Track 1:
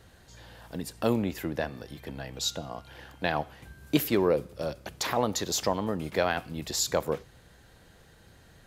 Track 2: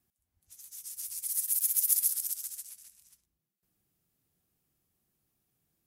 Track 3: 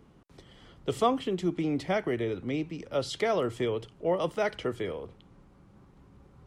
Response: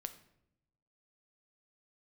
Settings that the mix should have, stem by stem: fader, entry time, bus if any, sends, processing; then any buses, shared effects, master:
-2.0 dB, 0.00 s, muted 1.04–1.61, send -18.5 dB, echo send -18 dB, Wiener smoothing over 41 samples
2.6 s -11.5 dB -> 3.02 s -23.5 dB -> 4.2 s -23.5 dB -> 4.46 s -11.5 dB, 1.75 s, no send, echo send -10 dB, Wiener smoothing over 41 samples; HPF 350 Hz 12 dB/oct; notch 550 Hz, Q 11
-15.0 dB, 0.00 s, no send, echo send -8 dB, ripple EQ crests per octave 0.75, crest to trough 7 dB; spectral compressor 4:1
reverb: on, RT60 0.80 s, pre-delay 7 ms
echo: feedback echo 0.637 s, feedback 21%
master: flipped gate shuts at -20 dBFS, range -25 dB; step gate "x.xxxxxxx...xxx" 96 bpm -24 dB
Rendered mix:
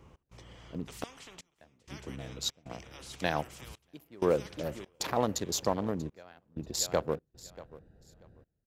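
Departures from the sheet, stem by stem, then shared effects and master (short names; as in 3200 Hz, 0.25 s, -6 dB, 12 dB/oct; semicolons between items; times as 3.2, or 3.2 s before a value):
stem 2 -11.5 dB -> -23.5 dB; master: missing flipped gate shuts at -20 dBFS, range -25 dB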